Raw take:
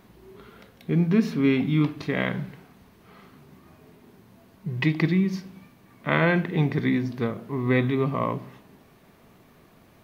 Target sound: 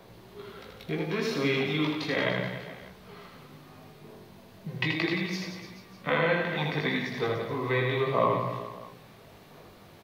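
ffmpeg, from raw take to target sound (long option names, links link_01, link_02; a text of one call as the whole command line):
ffmpeg -i in.wav -filter_complex "[0:a]bandreject=frequency=60:width_type=h:width=6,bandreject=frequency=120:width_type=h:width=6,flanger=delay=16.5:depth=3.9:speed=0.36,equalizer=frequency=125:width_type=o:width=1:gain=3,equalizer=frequency=250:width_type=o:width=1:gain=-5,equalizer=frequency=500:width_type=o:width=1:gain=3,equalizer=frequency=4000:width_type=o:width=1:gain=6,acrossover=split=390[link_01][link_02];[link_02]acompressor=threshold=-30dB:ratio=3[link_03];[link_01][link_03]amix=inputs=2:normalize=0,asettb=1/sr,asplit=3[link_04][link_05][link_06];[link_04]atrim=end=6.374[link_07];[link_05]atrim=start=6.37:end=7.1,asetpts=PTS-STARTPTS,afade=type=in:duration=0.004:curve=qsin,afade=type=out:start_time=0.726:duration=0.004:curve=qsin,equalizer=frequency=410:width_type=o:width=0.68:gain=-8.5[link_08];[link_06]atrim=start=7.096[link_09];[link_07][link_08]acrossfade=duration=0.004:curve1=hsin:curve2=qsin[link_10];[link_10][link_09]acrossfade=duration=0.004:curve1=qsin:curve2=hsin,acrossover=split=390|1100[link_11][link_12][link_13];[link_11]acompressor=threshold=-39dB:ratio=6[link_14];[link_12]aphaser=in_gain=1:out_gain=1:delay=4:decay=0.61:speed=0.73:type=sinusoidal[link_15];[link_14][link_15][link_13]amix=inputs=3:normalize=0,aecho=1:1:80|176|291.2|429.4|595.3:0.631|0.398|0.251|0.158|0.1,volume=3dB" out.wav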